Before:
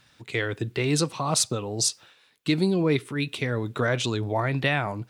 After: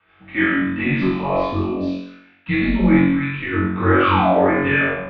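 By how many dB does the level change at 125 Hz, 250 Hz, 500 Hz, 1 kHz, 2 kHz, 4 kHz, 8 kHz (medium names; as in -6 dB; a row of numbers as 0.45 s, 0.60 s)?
+4.5 dB, +10.0 dB, +6.5 dB, +11.0 dB, +9.5 dB, -4.0 dB, under -35 dB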